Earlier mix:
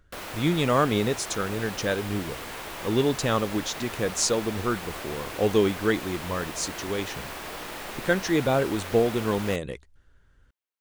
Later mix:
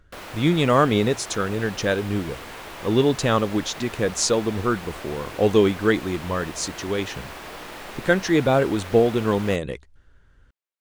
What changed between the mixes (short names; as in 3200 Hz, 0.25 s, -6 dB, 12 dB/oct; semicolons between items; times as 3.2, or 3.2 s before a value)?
speech +4.5 dB; master: add high shelf 7100 Hz -6 dB